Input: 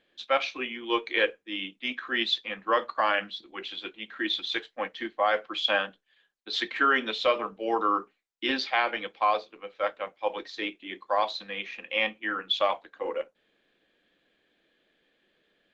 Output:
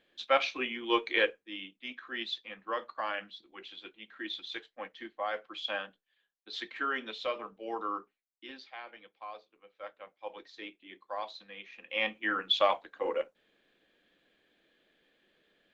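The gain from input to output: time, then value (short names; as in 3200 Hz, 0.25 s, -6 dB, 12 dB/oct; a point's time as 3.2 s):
1.12 s -1 dB
1.69 s -10 dB
7.95 s -10 dB
8.55 s -20 dB
9.28 s -20 dB
10.37 s -12 dB
11.69 s -12 dB
12.18 s -0.5 dB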